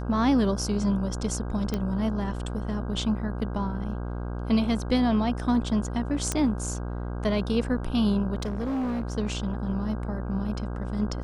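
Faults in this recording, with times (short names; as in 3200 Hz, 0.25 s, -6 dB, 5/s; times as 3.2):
buzz 60 Hz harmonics 27 -32 dBFS
1.74 pop -15 dBFS
6.32 pop -12 dBFS
8.4–9.13 clipped -25.5 dBFS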